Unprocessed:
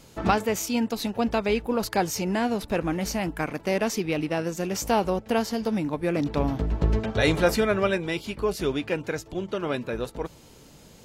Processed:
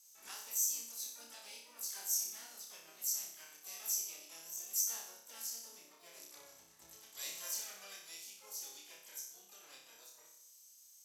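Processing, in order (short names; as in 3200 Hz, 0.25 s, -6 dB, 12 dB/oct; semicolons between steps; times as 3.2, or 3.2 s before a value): band-pass 6100 Hz, Q 8.7; harmoniser +4 st -3 dB, +5 st -16 dB, +12 st -1 dB; flutter echo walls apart 5.2 m, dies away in 0.66 s; gain -1.5 dB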